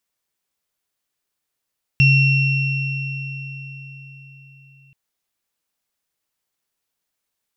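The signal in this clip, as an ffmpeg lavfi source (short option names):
-f lavfi -i "aevalsrc='0.282*pow(10,-3*t/4.47)*sin(2*PI*136*t)+0.224*pow(10,-3*t/4.31)*sin(2*PI*2720*t)+0.0398*pow(10,-3*t/3.12)*sin(2*PI*5450*t)':d=2.93:s=44100"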